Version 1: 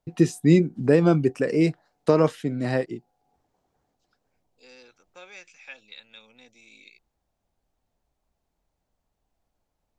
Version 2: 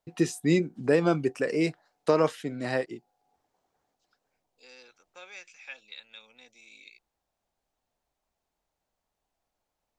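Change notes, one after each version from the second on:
master: add bass shelf 320 Hz -11.5 dB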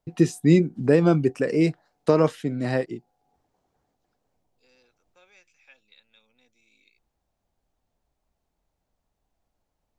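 second voice -12.0 dB; master: add bass shelf 320 Hz +11.5 dB

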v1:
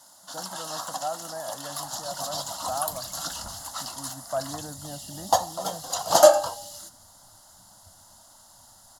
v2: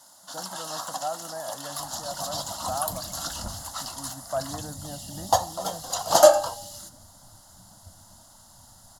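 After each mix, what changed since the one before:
second sound +8.0 dB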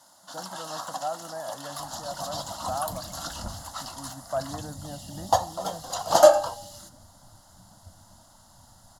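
master: add treble shelf 4.7 kHz -7 dB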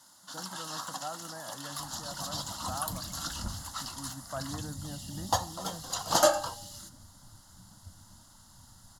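master: add peaking EQ 660 Hz -11.5 dB 0.84 oct

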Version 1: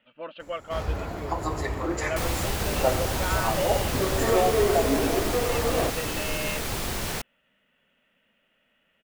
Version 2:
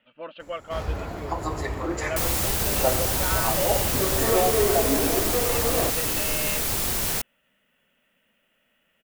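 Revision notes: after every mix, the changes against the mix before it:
second sound: add treble shelf 6.5 kHz +12 dB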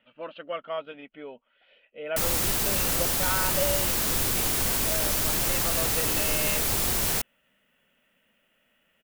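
first sound: muted

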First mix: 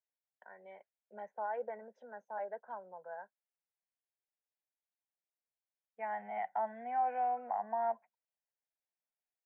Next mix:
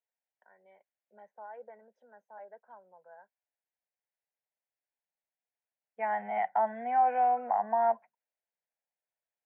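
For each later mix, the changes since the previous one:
first voice -8.0 dB; second voice +7.5 dB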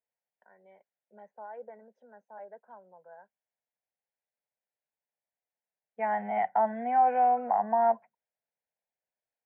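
master: add bass shelf 410 Hz +9.5 dB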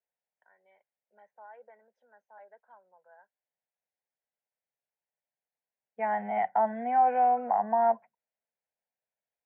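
first voice: add band-pass filter 2.9 kHz, Q 0.5

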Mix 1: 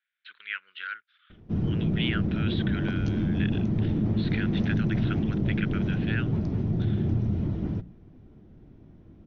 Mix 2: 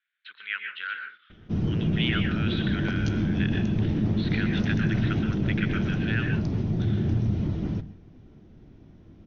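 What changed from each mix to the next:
background: add treble shelf 2.5 kHz +10 dB; reverb: on, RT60 0.35 s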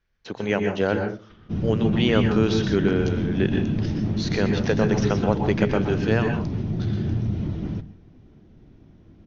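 speech: remove elliptic band-pass 1.4–3.7 kHz, stop band 40 dB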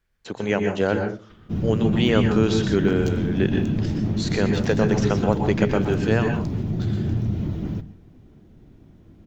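master: remove elliptic low-pass 6.1 kHz, stop band 40 dB

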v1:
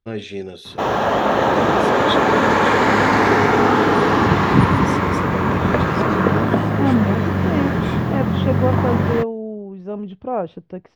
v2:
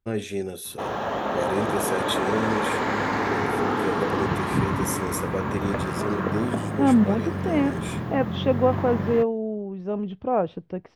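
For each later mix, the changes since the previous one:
first voice: remove resonant low-pass 4.1 kHz, resonance Q 1.7; background -10.0 dB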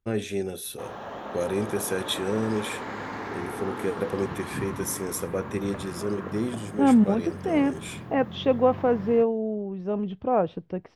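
background -10.0 dB

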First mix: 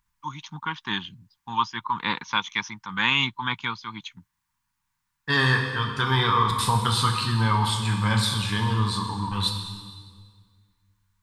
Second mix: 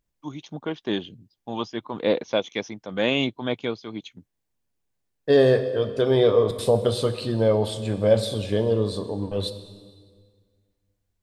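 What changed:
second voice: send -9.0 dB; master: remove FFT filter 180 Hz 0 dB, 620 Hz -27 dB, 930 Hz +13 dB, 2.9 kHz +4 dB

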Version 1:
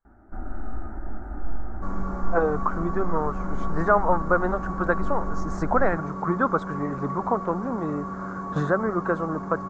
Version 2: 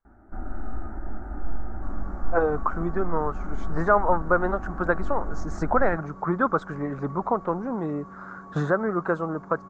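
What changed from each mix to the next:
second sound -11.0 dB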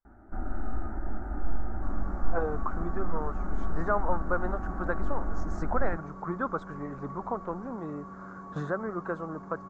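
speech -8.5 dB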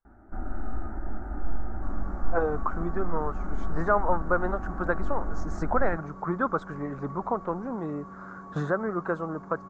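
speech +4.5 dB

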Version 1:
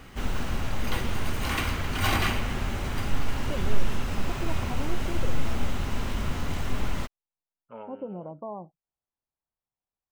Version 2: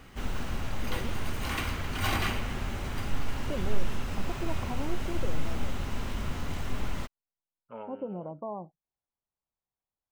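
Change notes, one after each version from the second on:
background -4.0 dB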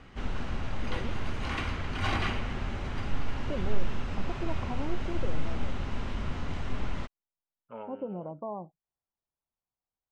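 background: add distance through air 110 m

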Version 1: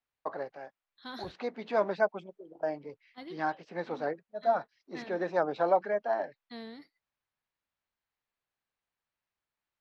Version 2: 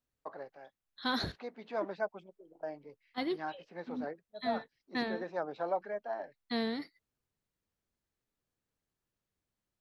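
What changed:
first voice -8.0 dB; second voice +10.5 dB

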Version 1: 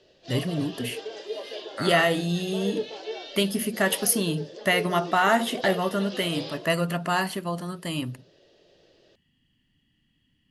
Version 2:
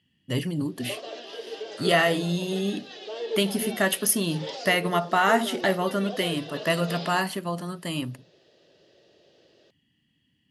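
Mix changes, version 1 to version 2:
second voice -12.0 dB; background: entry +0.55 s; master: add high-pass 93 Hz

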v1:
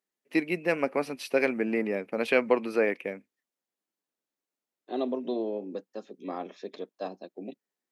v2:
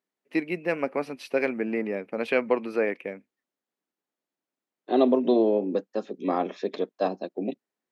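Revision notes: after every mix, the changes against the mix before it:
second voice +10.0 dB; master: add treble shelf 4.9 kHz -8.5 dB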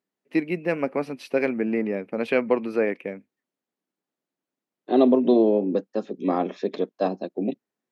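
master: add bass shelf 290 Hz +8 dB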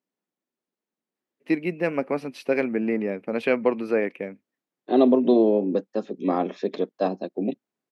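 first voice: entry +1.15 s

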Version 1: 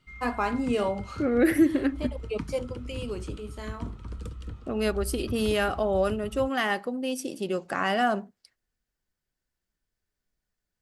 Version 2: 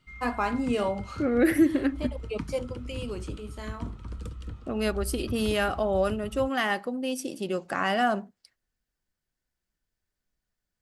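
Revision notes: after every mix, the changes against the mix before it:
master: add peaking EQ 420 Hz -2.5 dB 0.28 oct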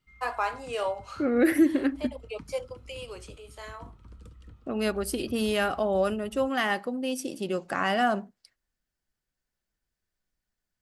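first voice: add high-pass 470 Hz 24 dB/octave; background -11.0 dB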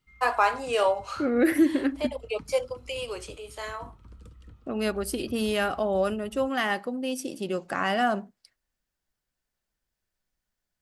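first voice +6.5 dB

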